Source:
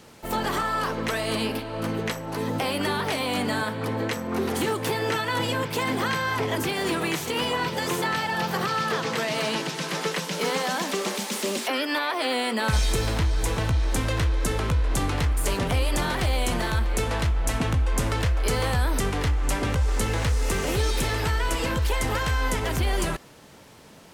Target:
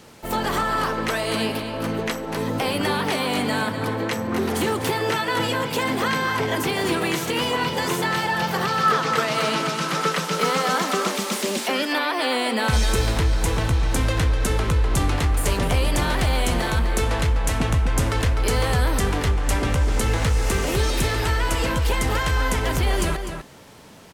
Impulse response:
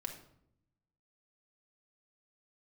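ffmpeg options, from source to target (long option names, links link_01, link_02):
-filter_complex "[0:a]asettb=1/sr,asplit=3[link_01][link_02][link_03];[link_01]atrim=end=8.834[link_04];[link_02]atrim=start=8.83:end=11.11,asetpts=PTS-STARTPTS,afade=type=in:duration=0.004:curve=qsin,afade=type=out:start_time=2.276:duration=0.004:curve=qsin,equalizer=frequency=1300:width_type=o:width=0.2:gain=11.5[link_05];[link_03]atrim=start=11.106[link_06];[link_04][link_05]acrossfade=duration=0.004:curve1=hsin:curve2=qsin[link_07];[link_07][link_06]acrossfade=duration=0.004:curve1=qsin:curve2=hsin,asplit=2[link_08][link_09];[link_09]adelay=250.7,volume=-7dB,highshelf=frequency=4000:gain=-5.64[link_10];[link_08][link_10]amix=inputs=2:normalize=0,volume=2.5dB"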